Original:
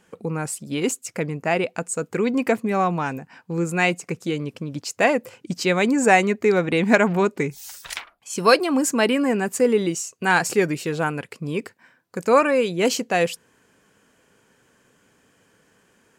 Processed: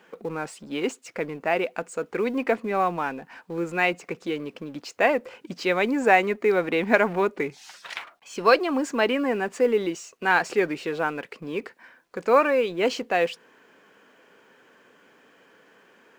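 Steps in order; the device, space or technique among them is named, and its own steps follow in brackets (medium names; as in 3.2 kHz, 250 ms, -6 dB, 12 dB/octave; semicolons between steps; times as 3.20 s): phone line with mismatched companding (band-pass 300–3400 Hz; companding laws mixed up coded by mu); trim -2 dB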